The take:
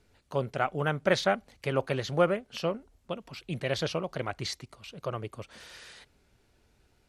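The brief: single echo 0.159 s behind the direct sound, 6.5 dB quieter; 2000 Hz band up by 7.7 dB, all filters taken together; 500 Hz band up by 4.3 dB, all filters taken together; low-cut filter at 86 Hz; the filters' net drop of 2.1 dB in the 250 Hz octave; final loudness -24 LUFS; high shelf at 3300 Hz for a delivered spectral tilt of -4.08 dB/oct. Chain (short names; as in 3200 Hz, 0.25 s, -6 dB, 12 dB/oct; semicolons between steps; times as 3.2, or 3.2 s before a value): HPF 86 Hz; bell 250 Hz -6 dB; bell 500 Hz +5.5 dB; bell 2000 Hz +9 dB; high shelf 3300 Hz +3 dB; echo 0.159 s -6.5 dB; gain +2.5 dB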